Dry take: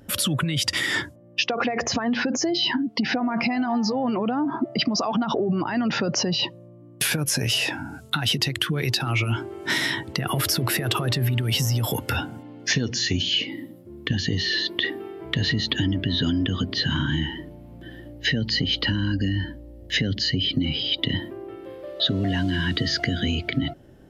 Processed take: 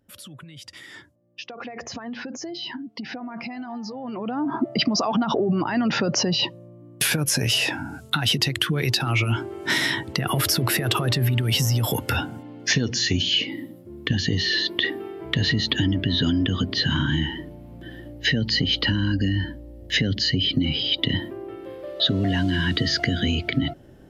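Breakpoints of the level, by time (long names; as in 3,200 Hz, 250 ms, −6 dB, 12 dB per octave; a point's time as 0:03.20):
0:01.02 −18.5 dB
0:01.80 −10 dB
0:04.01 −10 dB
0:04.55 +1.5 dB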